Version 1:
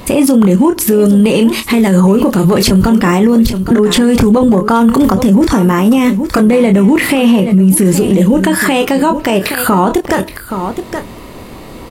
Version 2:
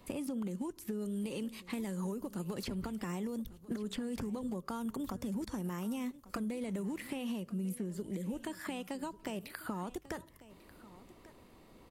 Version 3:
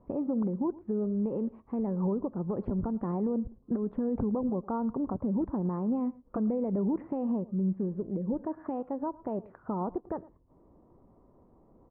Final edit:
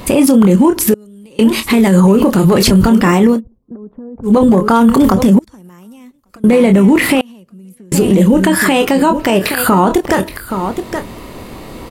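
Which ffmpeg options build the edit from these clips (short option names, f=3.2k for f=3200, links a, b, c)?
-filter_complex "[1:a]asplit=3[a][b][c];[0:a]asplit=5[d][e][f][g][h];[d]atrim=end=0.942[i];[a]atrim=start=0.938:end=1.392[j];[e]atrim=start=1.388:end=3.41[k];[2:a]atrim=start=3.31:end=4.33[l];[f]atrim=start=4.23:end=5.392[m];[b]atrim=start=5.388:end=6.442[n];[g]atrim=start=6.438:end=7.212[o];[c]atrim=start=7.208:end=7.922[p];[h]atrim=start=7.918[q];[i][j]acrossfade=d=0.004:c1=hsin:c2=hsin[r];[r][k]acrossfade=d=0.004:c1=hsin:c2=hsin[s];[s][l]acrossfade=d=0.1:c1=tri:c2=tri[t];[t][m]acrossfade=d=0.1:c1=tri:c2=tri[u];[u][n]acrossfade=d=0.004:c1=hsin:c2=hsin[v];[v][o]acrossfade=d=0.004:c1=hsin:c2=hsin[w];[w][p]acrossfade=d=0.004:c1=hsin:c2=hsin[x];[x][q]acrossfade=d=0.004:c1=hsin:c2=hsin"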